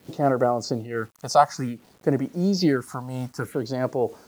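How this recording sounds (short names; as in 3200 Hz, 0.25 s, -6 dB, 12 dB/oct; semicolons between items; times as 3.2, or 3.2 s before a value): phasing stages 4, 0.56 Hz, lowest notch 350–3800 Hz; a quantiser's noise floor 10-bit, dither none; noise-modulated level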